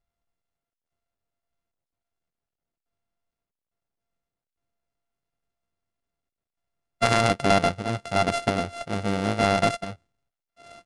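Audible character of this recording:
a buzz of ramps at a fixed pitch in blocks of 64 samples
sample-and-hold tremolo, depth 65%
IMA ADPCM

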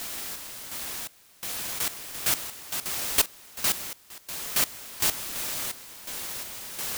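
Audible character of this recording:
a quantiser's noise floor 6 bits, dither triangular
sample-and-hold tremolo 2.8 Hz, depth 95%

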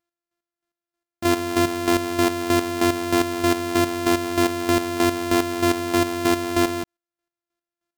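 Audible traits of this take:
a buzz of ramps at a fixed pitch in blocks of 128 samples
chopped level 3.2 Hz, depth 65%, duty 30%
AC-3

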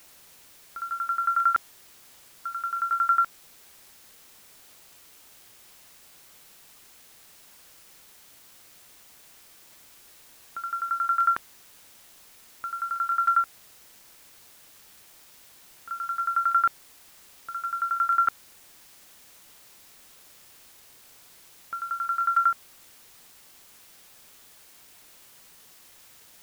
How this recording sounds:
tremolo saw down 11 Hz, depth 100%
a quantiser's noise floor 10 bits, dither triangular

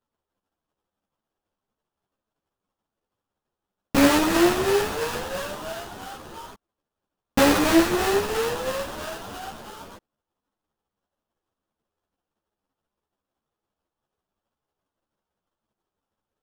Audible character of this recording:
a buzz of ramps at a fixed pitch in blocks of 8 samples
phaser sweep stages 8, 3 Hz, lowest notch 680–4,200 Hz
aliases and images of a low sample rate 2,200 Hz, jitter 20%
a shimmering, thickened sound

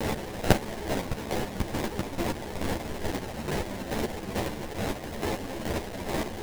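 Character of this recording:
a quantiser's noise floor 6 bits, dither triangular
chopped level 2.3 Hz, depth 60%, duty 30%
aliases and images of a low sample rate 1,300 Hz, jitter 20%
a shimmering, thickened sound

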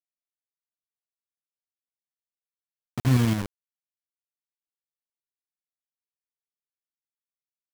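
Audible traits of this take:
tremolo saw up 12 Hz, depth 45%
a quantiser's noise floor 6 bits, dither none

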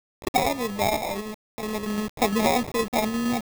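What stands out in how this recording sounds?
aliases and images of a low sample rate 1,500 Hz, jitter 0%
tremolo saw down 8.6 Hz, depth 40%
a quantiser's noise floor 6 bits, dither none

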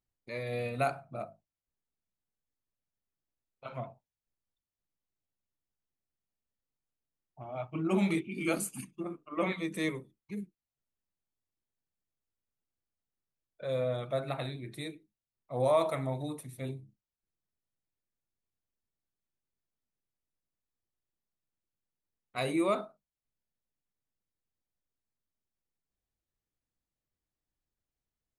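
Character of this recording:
background noise floor −93 dBFS
spectral slope −5.5 dB per octave

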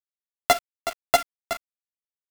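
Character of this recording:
a buzz of ramps at a fixed pitch in blocks of 64 samples
chopped level 11 Hz, depth 65%, duty 70%
a quantiser's noise floor 6 bits, dither none
a shimmering, thickened sound

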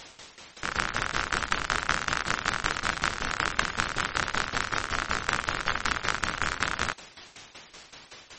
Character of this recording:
a quantiser's noise floor 8 bits, dither triangular
tremolo saw down 5.3 Hz, depth 85%
aliases and images of a low sample rate 12,000 Hz, jitter 0%
MP3

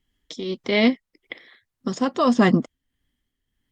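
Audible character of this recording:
tremolo triangle 1.7 Hz, depth 60%
Opus

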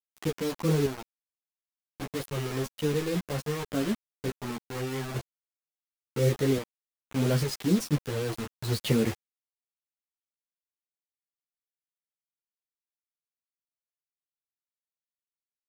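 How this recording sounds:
sample-and-hold tremolo, depth 80%
a quantiser's noise floor 6 bits, dither none
a shimmering, thickened sound

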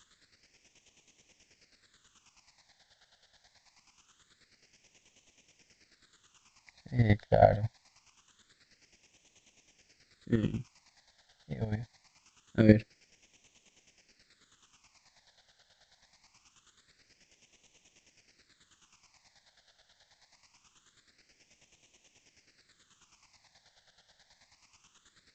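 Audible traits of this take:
a quantiser's noise floor 10 bits, dither triangular
chopped level 9.3 Hz, depth 65%, duty 30%
phaser sweep stages 8, 0.24 Hz, lowest notch 330–1,400 Hz
G.722

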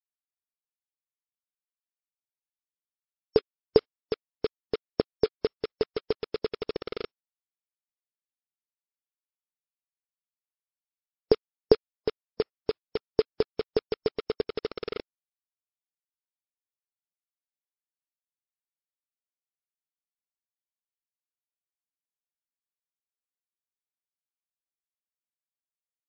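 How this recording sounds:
a buzz of ramps at a fixed pitch in blocks of 8 samples
tremolo saw up 3.4 Hz, depth 75%
a quantiser's noise floor 6 bits, dither none
MP3

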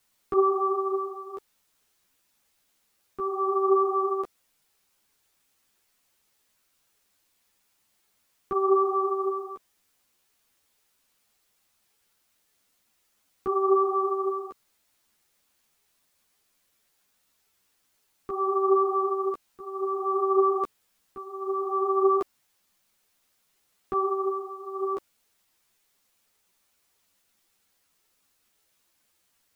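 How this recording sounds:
tremolo triangle 0.6 Hz, depth 90%
a quantiser's noise floor 12 bits, dither triangular
a shimmering, thickened sound

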